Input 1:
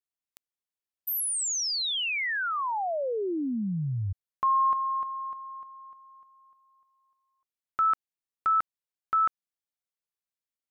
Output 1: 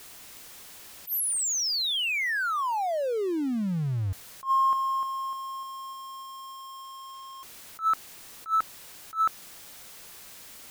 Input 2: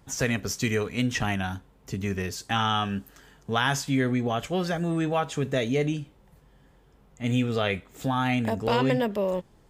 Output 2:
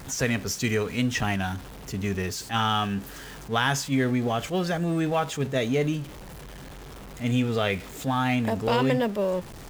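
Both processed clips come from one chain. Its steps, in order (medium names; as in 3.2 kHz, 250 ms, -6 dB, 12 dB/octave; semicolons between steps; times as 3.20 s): jump at every zero crossing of -37 dBFS; attacks held to a fixed rise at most 260 dB/s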